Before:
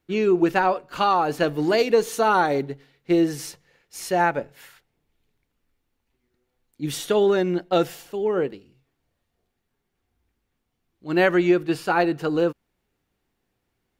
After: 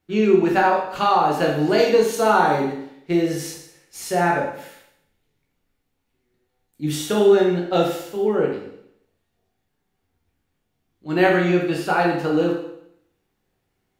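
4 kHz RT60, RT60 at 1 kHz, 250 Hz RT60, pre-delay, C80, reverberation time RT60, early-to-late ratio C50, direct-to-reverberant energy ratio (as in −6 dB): 0.70 s, 0.70 s, 0.75 s, 10 ms, 7.5 dB, 0.75 s, 4.0 dB, −1.5 dB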